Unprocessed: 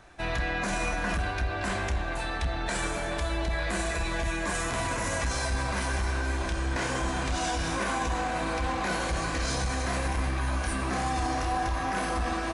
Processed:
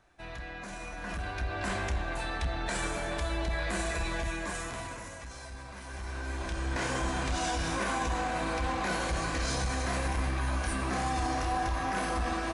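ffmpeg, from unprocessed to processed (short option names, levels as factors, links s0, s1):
-af "volume=3.35,afade=t=in:st=0.9:d=0.75:silence=0.334965,afade=t=out:st=4.06:d=1.09:silence=0.237137,afade=t=in:st=5.83:d=0.32:silence=0.473151,afade=t=in:st=6.15:d=0.72:silence=0.473151"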